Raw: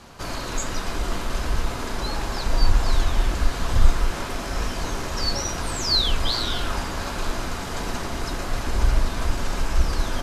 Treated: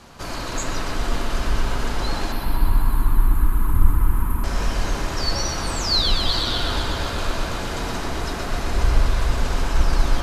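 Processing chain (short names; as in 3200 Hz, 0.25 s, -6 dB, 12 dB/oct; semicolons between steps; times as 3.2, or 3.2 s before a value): 2.32–4.44 EQ curve 300 Hz 0 dB, 630 Hz -21 dB, 960 Hz 0 dB, 5600 Hz -27 dB, 12000 Hz +12 dB; analogue delay 0.124 s, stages 4096, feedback 78%, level -5 dB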